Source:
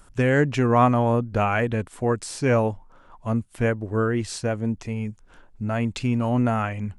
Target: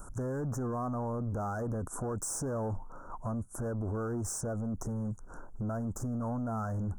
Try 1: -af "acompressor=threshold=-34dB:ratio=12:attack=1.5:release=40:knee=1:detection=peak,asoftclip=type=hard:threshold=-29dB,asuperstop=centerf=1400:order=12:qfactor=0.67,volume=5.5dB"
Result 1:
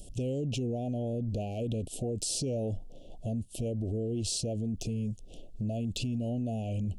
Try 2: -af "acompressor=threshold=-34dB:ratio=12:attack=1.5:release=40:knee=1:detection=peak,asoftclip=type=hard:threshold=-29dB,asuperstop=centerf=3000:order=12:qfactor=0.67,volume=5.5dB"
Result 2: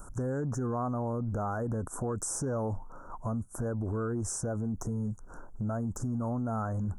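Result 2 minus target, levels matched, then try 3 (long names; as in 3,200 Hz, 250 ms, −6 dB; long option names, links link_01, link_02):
hard clipping: distortion −19 dB
-af "acompressor=threshold=-34dB:ratio=12:attack=1.5:release=40:knee=1:detection=peak,asoftclip=type=hard:threshold=-36dB,asuperstop=centerf=3000:order=12:qfactor=0.67,volume=5.5dB"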